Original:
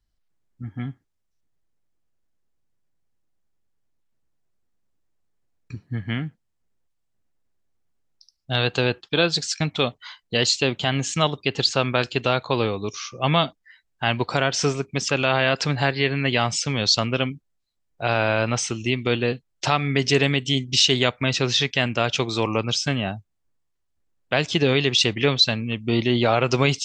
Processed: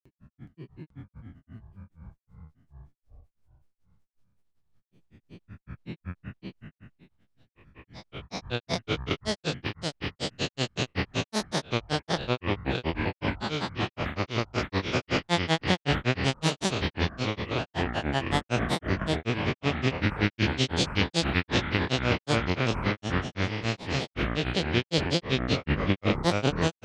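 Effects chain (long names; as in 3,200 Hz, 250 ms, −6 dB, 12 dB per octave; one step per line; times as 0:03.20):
spectrum smeared in time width 932 ms
granular cloud 114 ms, grains 5.3 per second, pitch spread up and down by 7 semitones
delay with pitch and tempo change per echo 397 ms, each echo −6 semitones, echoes 2
level +4.5 dB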